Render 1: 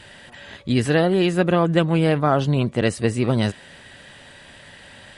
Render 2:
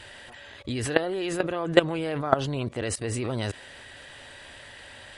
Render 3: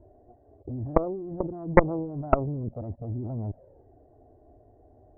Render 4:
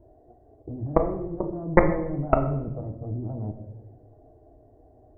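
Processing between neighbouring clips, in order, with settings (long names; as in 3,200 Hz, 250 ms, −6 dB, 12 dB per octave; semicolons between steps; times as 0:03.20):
parametric band 180 Hz −13 dB 0.67 octaves; output level in coarse steps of 17 dB; level +5 dB
flanger swept by the level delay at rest 3.2 ms, full sweep at −19 dBFS; Chebyshev low-pass filter 670 Hz, order 4; harmonic generator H 4 −8 dB, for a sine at −7 dBFS; level +2 dB
rectangular room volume 270 cubic metres, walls mixed, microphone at 0.62 metres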